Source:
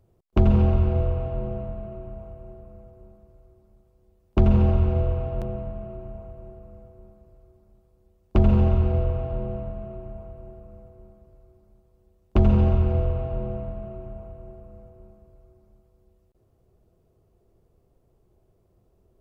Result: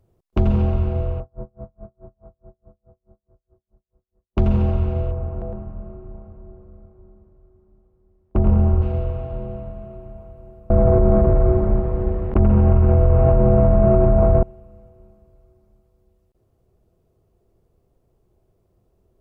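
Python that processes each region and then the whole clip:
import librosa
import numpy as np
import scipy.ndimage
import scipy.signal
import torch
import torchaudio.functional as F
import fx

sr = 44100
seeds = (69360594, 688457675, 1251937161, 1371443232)

y = fx.chain(x, sr, fx.lowpass(hz=1500.0, slope=24),
    fx.tremolo_db(hz=4.7, depth_db=38), at=(1.2, 4.38))
y = fx.chain(y, sr, fx.lowpass(hz=1400.0, slope=12),
    fx.echo_single(ms=110, db=-5.5), at=(5.11, 8.82))
y = fx.chain(y, sr, fx.lowpass(hz=2000.0, slope=24),
    fx.env_flatten(amount_pct=100), at=(10.7, 14.43))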